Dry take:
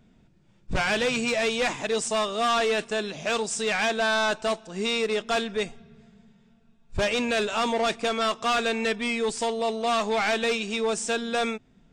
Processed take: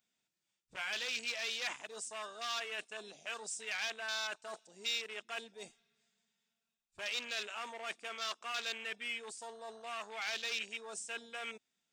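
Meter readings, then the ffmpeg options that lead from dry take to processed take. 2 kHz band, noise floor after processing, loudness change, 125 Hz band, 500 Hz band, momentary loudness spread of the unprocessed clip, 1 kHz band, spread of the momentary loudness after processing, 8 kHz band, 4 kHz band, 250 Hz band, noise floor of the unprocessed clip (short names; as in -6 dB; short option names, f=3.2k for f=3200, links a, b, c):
-12.0 dB, under -85 dBFS, -14.0 dB, under -30 dB, -22.5 dB, 5 LU, -18.0 dB, 11 LU, -11.0 dB, -9.5 dB, -28.5 dB, -60 dBFS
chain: -af "afwtdn=0.0251,aeval=exprs='0.141*(cos(1*acos(clip(val(0)/0.141,-1,1)))-cos(1*PI/2))+0.00158*(cos(6*acos(clip(val(0)/0.141,-1,1)))-cos(6*PI/2))':c=same,areverse,acompressor=threshold=-36dB:ratio=6,areverse,aderivative,volume=11.5dB"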